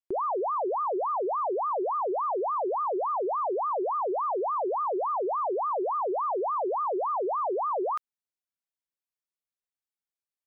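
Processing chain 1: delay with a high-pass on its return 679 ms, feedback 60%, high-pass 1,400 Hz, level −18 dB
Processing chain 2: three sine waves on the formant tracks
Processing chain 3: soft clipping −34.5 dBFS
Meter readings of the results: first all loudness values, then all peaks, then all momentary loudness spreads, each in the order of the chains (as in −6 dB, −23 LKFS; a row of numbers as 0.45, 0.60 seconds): −28.5, −29.0, −36.0 LKFS; −24.5, −18.0, −34.5 dBFS; 0, 1, 0 LU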